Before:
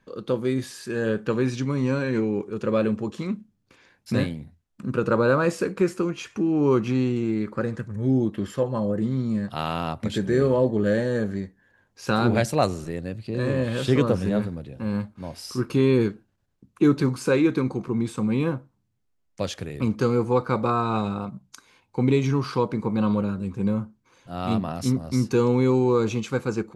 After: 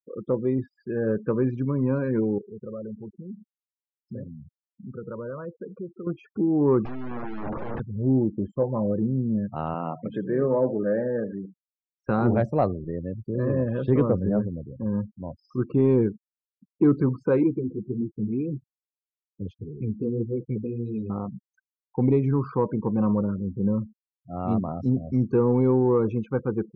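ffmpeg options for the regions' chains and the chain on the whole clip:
ffmpeg -i in.wav -filter_complex "[0:a]asettb=1/sr,asplit=3[link_01][link_02][link_03];[link_01]atrim=end=2.384[link_04];[link_02]atrim=start=2.38:end=6.07,asetpts=PTS-STARTPTS,afade=type=in:duration=0.004:curve=qsin,afade=type=out:start_time=3.686:duration=0.004:curve=qsin,equalizer=frequency=300:width=7.7:gain=-12,acompressor=threshold=-42dB:ratio=2:attack=3.2:release=140:knee=1:detection=peak[link_05];[link_03]atrim=start=6.066[link_06];[link_04][link_05]acrossfade=duration=0.004:curve1=hsin:curve2=qsin[link_07];[link_07][link_06]acrossfade=duration=0.004:curve1=qsin:curve2=hsin,asettb=1/sr,asplit=3[link_08][link_09][link_10];[link_08]atrim=end=6.854[link_11];[link_09]atrim=start=6.85:end=7.8,asetpts=PTS-STARTPTS,afade=type=in:duration=0.004:curve=qsin,afade=type=out:start_time=0.946:duration=0.004:curve=qsin,acrossover=split=4000[link_12][link_13];[link_13]acompressor=threshold=-59dB:ratio=4:attack=1:release=60[link_14];[link_12][link_14]amix=inputs=2:normalize=0,aeval=exprs='(tanh(63.1*val(0)+0.55)-tanh(0.55))/63.1':channel_layout=same,aeval=exprs='0.0473*sin(PI/2*7.94*val(0)/0.0473)':channel_layout=same[link_15];[link_10]atrim=start=7.796[link_16];[link_11][link_15]acrossfade=duration=0.004:curve1=hsin:curve2=qsin[link_17];[link_17][link_16]acrossfade=duration=0.004:curve1=qsin:curve2=hsin,asettb=1/sr,asplit=3[link_18][link_19][link_20];[link_18]atrim=end=9.744[link_21];[link_19]atrim=start=9.74:end=12.09,asetpts=PTS-STARTPTS,afade=type=in:duration=0.004:curve=qsin,afade=type=out:start_time=2.346:duration=0.004:curve=qsin,highpass=frequency=150:width=0.5412,highpass=frequency=150:width=1.3066,equalizer=frequency=210:width_type=q:width=4:gain=-6,equalizer=frequency=380:width_type=q:width=4:gain=-4,equalizer=frequency=2400:width_type=q:width=4:gain=3,equalizer=frequency=4600:width_type=q:width=4:gain=-9,lowpass=frequency=9400:width=0.5412,lowpass=frequency=9400:width=1.3066,aecho=1:1:83:0.2,atrim=end_sample=103635[link_22];[link_20]atrim=start=12.086[link_23];[link_21][link_22]acrossfade=duration=0.004:curve1=hsin:curve2=qsin[link_24];[link_24][link_23]acrossfade=duration=0.004:curve1=qsin:curve2=hsin,asettb=1/sr,asplit=3[link_25][link_26][link_27];[link_25]atrim=end=17.434[link_28];[link_26]atrim=start=17.43:end=21.1,asetpts=PTS-STARTPTS,afade=type=in:duration=0.004:curve=qsin,afade=type=out:start_time=3.666:duration=0.004:curve=qsin,flanger=delay=4.7:depth=7.7:regen=-4:speed=1.7:shape=triangular,asuperstop=centerf=990:order=12:qfactor=0.58[link_29];[link_27]atrim=start=21.096[link_30];[link_28][link_29]acrossfade=duration=0.004:curve1=hsin:curve2=qsin[link_31];[link_31][link_30]acrossfade=duration=0.004:curve1=qsin:curve2=hsin,afftfilt=real='re*gte(hypot(re,im),0.0282)':imag='im*gte(hypot(re,im),0.0282)':win_size=1024:overlap=0.75,lowpass=1100,acontrast=42,volume=-5.5dB" out.wav

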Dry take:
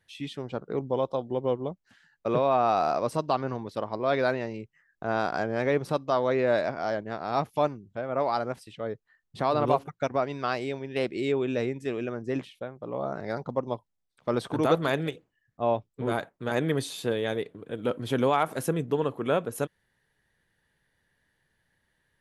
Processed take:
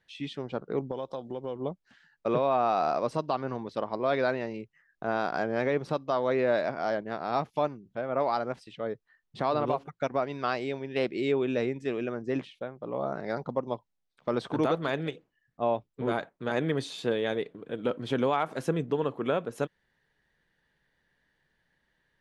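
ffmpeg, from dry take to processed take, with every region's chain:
ffmpeg -i in.wav -filter_complex "[0:a]asettb=1/sr,asplit=3[link_01][link_02][link_03];[link_01]atrim=end=0.914[link_04];[link_02]atrim=start=0.91:end=1.56,asetpts=PTS-STARTPTS,afade=type=in:duration=0.004:curve=qsin,afade=type=out:start_time=0.646:duration=0.004:curve=qsin,aemphasis=mode=production:type=50kf,acompressor=threshold=-34dB:ratio=2.5:attack=3.2:release=140:knee=1:detection=peak[link_05];[link_03]atrim=start=1.556[link_06];[link_04][link_05]acrossfade=duration=0.004:curve1=hsin:curve2=qsin[link_07];[link_07][link_06]acrossfade=duration=0.004:curve1=qsin:curve2=hsin,lowpass=5800,equalizer=frequency=96:width_type=o:width=0.34:gain=-13.5,alimiter=limit=-15.5dB:level=0:latency=1:release=306" out.wav

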